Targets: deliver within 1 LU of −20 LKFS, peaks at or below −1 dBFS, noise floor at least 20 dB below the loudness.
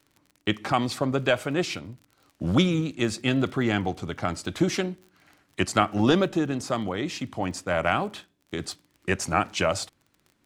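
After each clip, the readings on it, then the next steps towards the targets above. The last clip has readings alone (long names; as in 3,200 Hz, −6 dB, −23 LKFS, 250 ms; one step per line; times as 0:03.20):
crackle rate 31 per second; integrated loudness −26.5 LKFS; sample peak −4.0 dBFS; target loudness −20.0 LKFS
→ click removal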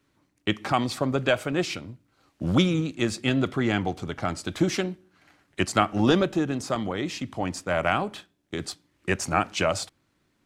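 crackle rate 0 per second; integrated loudness −26.5 LKFS; sample peak −4.0 dBFS; target loudness −20.0 LKFS
→ level +6.5 dB
brickwall limiter −1 dBFS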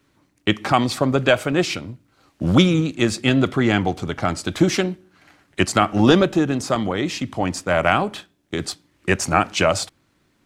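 integrated loudness −20.0 LKFS; sample peak −1.0 dBFS; background noise floor −64 dBFS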